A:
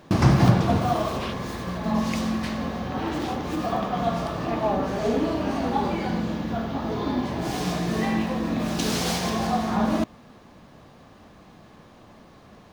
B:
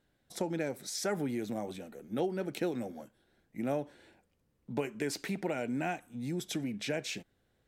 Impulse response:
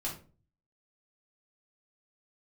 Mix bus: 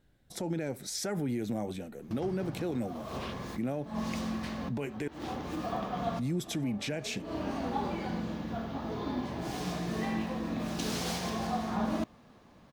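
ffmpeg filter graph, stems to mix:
-filter_complex "[0:a]adelay=2000,volume=-8.5dB[link_01];[1:a]lowshelf=frequency=160:gain=11,alimiter=level_in=2.5dB:limit=-24dB:level=0:latency=1:release=38,volume=-2.5dB,volume=1.5dB,asplit=3[link_02][link_03][link_04];[link_02]atrim=end=5.08,asetpts=PTS-STARTPTS,afade=type=out:start_time=5.076:duration=0.004:curve=hsin[link_05];[link_03]atrim=start=5.08:end=6.19,asetpts=PTS-STARTPTS,volume=0[link_06];[link_04]atrim=start=6.19,asetpts=PTS-STARTPTS,afade=type=in:duration=0.004:curve=hsin[link_07];[link_05][link_06][link_07]concat=n=3:v=0:a=1,asplit=2[link_08][link_09];[link_09]apad=whole_len=649288[link_10];[link_01][link_10]sidechaincompress=threshold=-50dB:ratio=12:attack=37:release=149[link_11];[link_11][link_08]amix=inputs=2:normalize=0"

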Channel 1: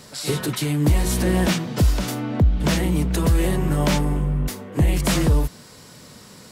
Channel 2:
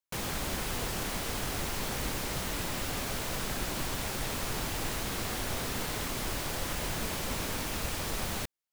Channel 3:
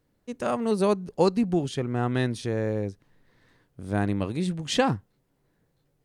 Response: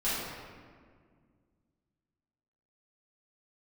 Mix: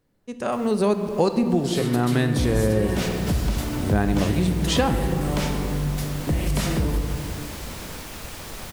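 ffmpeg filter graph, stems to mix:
-filter_complex "[0:a]adelay=1500,volume=-5dB,asplit=2[link_01][link_02];[link_02]volume=-10dB[link_03];[1:a]adelay=400,volume=-2dB,afade=type=in:start_time=2.77:duration=0.28:silence=0.251189[link_04];[2:a]dynaudnorm=framelen=460:gausssize=3:maxgain=11.5dB,volume=0dB,asplit=2[link_05][link_06];[link_06]volume=-16dB[link_07];[3:a]atrim=start_sample=2205[link_08];[link_03][link_07]amix=inputs=2:normalize=0[link_09];[link_09][link_08]afir=irnorm=-1:irlink=0[link_10];[link_01][link_04][link_05][link_10]amix=inputs=4:normalize=0,acompressor=threshold=-21dB:ratio=2"

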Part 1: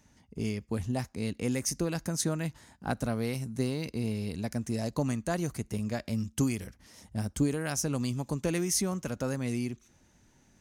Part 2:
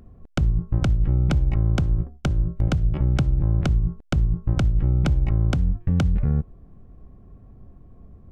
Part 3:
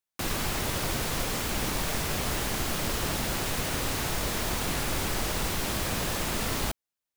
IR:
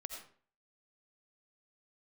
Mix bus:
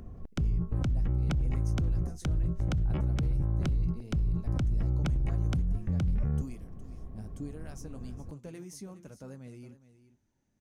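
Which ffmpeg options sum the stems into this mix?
-filter_complex "[0:a]flanger=delay=6.1:depth=4.5:regen=-55:speed=1.2:shape=sinusoidal,tiltshelf=frequency=970:gain=3.5,volume=-12.5dB,asplit=2[link_01][link_02];[link_02]volume=-14.5dB[link_03];[1:a]volume=2.5dB,acrossover=split=370[link_04][link_05];[link_05]acompressor=threshold=-30dB:ratio=6[link_06];[link_04][link_06]amix=inputs=2:normalize=0,alimiter=limit=-19dB:level=0:latency=1:release=31,volume=0dB[link_07];[link_03]aecho=0:1:413:1[link_08];[link_01][link_07][link_08]amix=inputs=3:normalize=0,alimiter=limit=-23dB:level=0:latency=1:release=17"

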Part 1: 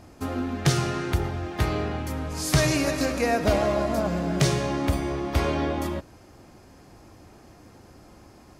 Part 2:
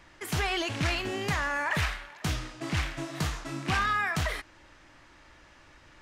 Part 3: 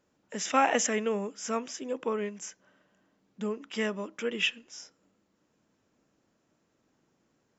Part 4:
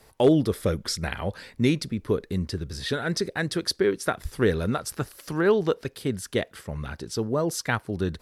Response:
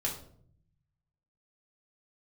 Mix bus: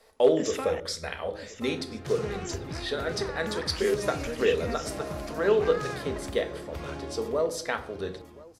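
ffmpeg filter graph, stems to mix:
-filter_complex "[0:a]alimiter=limit=-15.5dB:level=0:latency=1:release=100,adelay=1400,volume=-13dB,asplit=2[link_01][link_02];[link_02]volume=-9.5dB[link_03];[1:a]adynamicsmooth=sensitivity=1.5:basefreq=700,adelay=1900,volume=-8dB[link_04];[2:a]acompressor=threshold=-33dB:ratio=6,adelay=50,volume=-0.5dB,asplit=3[link_05][link_06][link_07];[link_05]atrim=end=0.8,asetpts=PTS-STARTPTS,afade=type=out:start_time=0.796:duration=0.004:curve=hsin[link_08];[link_06]atrim=start=0.8:end=2.18,asetpts=PTS-STARTPTS,volume=0[link_09];[link_07]atrim=start=2.18,asetpts=PTS-STARTPTS,afade=type=in:duration=0.004:curve=hsin[link_10];[link_08][link_09][link_10]concat=n=3:v=0:a=1,asplit=3[link_11][link_12][link_13];[link_12]volume=-20dB[link_14];[link_13]volume=-11dB[link_15];[3:a]equalizer=frequency=125:width_type=o:width=1:gain=-10,equalizer=frequency=500:width_type=o:width=1:gain=11,equalizer=frequency=1000:width_type=o:width=1:gain=5,equalizer=frequency=2000:width_type=o:width=1:gain=5,equalizer=frequency=4000:width_type=o:width=1:gain=7,equalizer=frequency=8000:width_type=o:width=1:gain=4,volume=-15.5dB,asplit=3[link_16][link_17][link_18];[link_17]volume=-4.5dB[link_19];[link_18]volume=-17.5dB[link_20];[4:a]atrim=start_sample=2205[link_21];[link_14][link_19]amix=inputs=2:normalize=0[link_22];[link_22][link_21]afir=irnorm=-1:irlink=0[link_23];[link_03][link_15][link_20]amix=inputs=3:normalize=0,aecho=0:1:1031:1[link_24];[link_01][link_04][link_11][link_16][link_23][link_24]amix=inputs=6:normalize=0"

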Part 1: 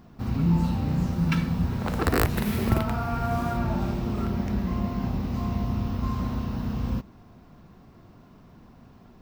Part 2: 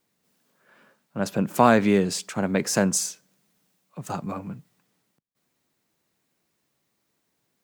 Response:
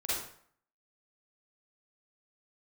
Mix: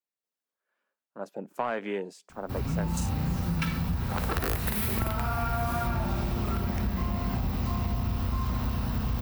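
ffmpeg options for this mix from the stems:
-filter_complex "[0:a]equalizer=frequency=260:width_type=o:width=2.3:gain=-8,dynaudnorm=framelen=160:gausssize=9:maxgain=6dB,aexciter=amount=2.2:drive=5.7:freq=9100,adelay=2300,volume=0dB,asplit=2[link_01][link_02];[link_02]volume=-20.5dB[link_03];[1:a]afwtdn=0.0316,highpass=390,volume=-6.5dB[link_04];[2:a]atrim=start_sample=2205[link_05];[link_03][link_05]afir=irnorm=-1:irlink=0[link_06];[link_01][link_04][link_06]amix=inputs=3:normalize=0,asoftclip=type=tanh:threshold=-14dB,acompressor=threshold=-25dB:ratio=6"

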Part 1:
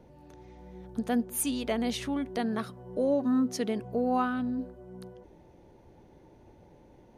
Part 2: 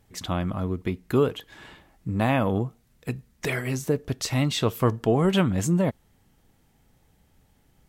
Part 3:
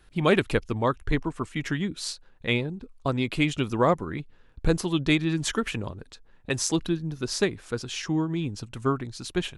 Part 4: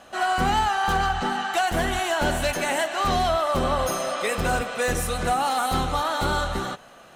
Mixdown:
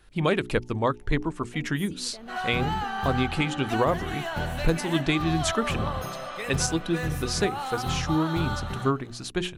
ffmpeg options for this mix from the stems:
ffmpeg -i stem1.wav -i stem2.wav -i stem3.wav -i stem4.wav -filter_complex "[0:a]alimiter=level_in=4dB:limit=-24dB:level=0:latency=1:release=157,volume=-4dB,adelay=450,volume=-9dB[link_01];[2:a]bandreject=frequency=60:width_type=h:width=6,bandreject=frequency=120:width_type=h:width=6,bandreject=frequency=180:width_type=h:width=6,bandreject=frequency=240:width_type=h:width=6,bandreject=frequency=300:width_type=h:width=6,bandreject=frequency=360:width_type=h:width=6,bandreject=frequency=420:width_type=h:width=6,volume=1dB[link_02];[3:a]equalizer=frequency=125:width_type=o:width=1:gain=12,equalizer=frequency=250:width_type=o:width=1:gain=-5,equalizer=frequency=500:width_type=o:width=1:gain=-4,equalizer=frequency=8000:width_type=o:width=1:gain=-10,adelay=2150,volume=-6.5dB[link_03];[link_01][link_02][link_03]amix=inputs=3:normalize=0,alimiter=limit=-12dB:level=0:latency=1:release=307" out.wav

